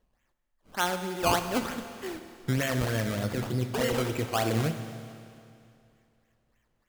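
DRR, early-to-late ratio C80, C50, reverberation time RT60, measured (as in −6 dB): 7.5 dB, 9.5 dB, 8.5 dB, 2.5 s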